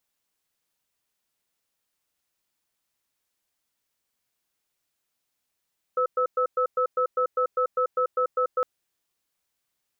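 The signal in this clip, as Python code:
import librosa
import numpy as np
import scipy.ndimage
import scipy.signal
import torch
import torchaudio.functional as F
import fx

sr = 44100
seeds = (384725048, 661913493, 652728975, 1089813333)

y = fx.cadence(sr, length_s=2.66, low_hz=504.0, high_hz=1300.0, on_s=0.09, off_s=0.11, level_db=-23.0)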